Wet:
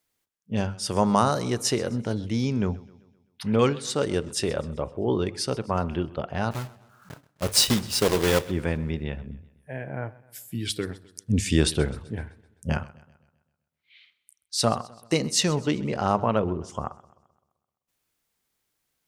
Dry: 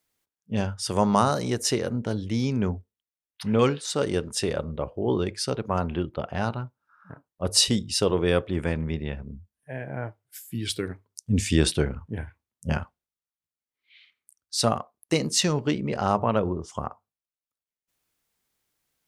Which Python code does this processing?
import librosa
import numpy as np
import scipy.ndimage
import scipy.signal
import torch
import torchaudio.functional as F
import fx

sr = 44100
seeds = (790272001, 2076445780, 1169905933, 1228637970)

y = fx.block_float(x, sr, bits=3, at=(6.51, 8.49))
y = fx.echo_warbled(y, sr, ms=129, feedback_pct=49, rate_hz=2.8, cents=63, wet_db=-20.5)